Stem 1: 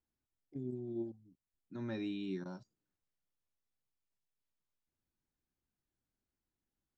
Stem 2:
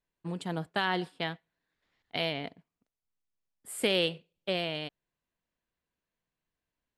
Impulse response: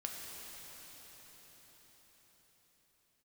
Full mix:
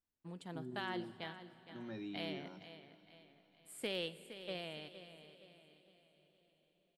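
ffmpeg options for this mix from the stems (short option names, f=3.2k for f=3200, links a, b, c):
-filter_complex "[0:a]bandreject=f=60:t=h:w=6,bandreject=f=120:t=h:w=6,bandreject=f=180:t=h:w=6,volume=-6dB,asplit=2[a][b];[b]volume=-18dB[c];[1:a]aeval=exprs='0.188*(cos(1*acos(clip(val(0)/0.188,-1,1)))-cos(1*PI/2))+0.0119*(cos(2*acos(clip(val(0)/0.188,-1,1)))-cos(2*PI/2))+0.00944*(cos(4*acos(clip(val(0)/0.188,-1,1)))-cos(4*PI/2))+0.00668*(cos(6*acos(clip(val(0)/0.188,-1,1)))-cos(6*PI/2))+0.00188*(cos(8*acos(clip(val(0)/0.188,-1,1)))-cos(8*PI/2))':c=same,volume=-14dB,asplit=3[d][e][f];[e]volume=-12dB[g];[f]volume=-11dB[h];[2:a]atrim=start_sample=2205[i];[g][i]afir=irnorm=-1:irlink=0[j];[c][h]amix=inputs=2:normalize=0,aecho=0:1:464|928|1392|1856|2320|2784:1|0.42|0.176|0.0741|0.0311|0.0131[k];[a][d][j][k]amix=inputs=4:normalize=0"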